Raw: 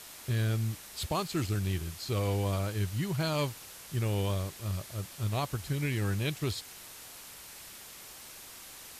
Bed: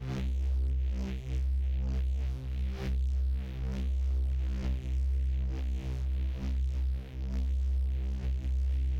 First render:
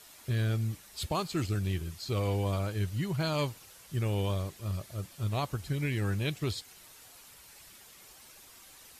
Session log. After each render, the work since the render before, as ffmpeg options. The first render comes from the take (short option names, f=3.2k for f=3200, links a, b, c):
-af "afftdn=nr=8:nf=-49"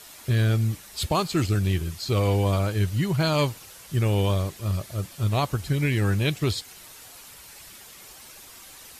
-af "volume=8dB"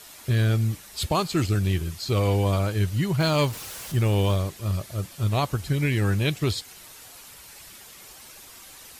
-filter_complex "[0:a]asettb=1/sr,asplit=3[a][b][c];[a]atrim=end=3.204[d];[b]atrim=start=3.2:end=4.36,asetpts=PTS-STARTPTS,afade=t=in:d=0.004:c=qsin,afade=t=out:st=1.156:d=0.004:c=qsin,aeval=exprs='val(0)+0.5*0.0168*sgn(val(0))':c=same[e];[c]atrim=start=4.356[f];[d][e]acrossfade=d=0.004:c1=hsin:c2=qsin[g];[g][f]acrossfade=d=0.004:c1=qsin:c2=hsin"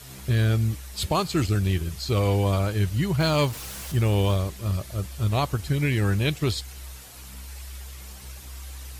-filter_complex "[1:a]volume=-10dB[a];[0:a][a]amix=inputs=2:normalize=0"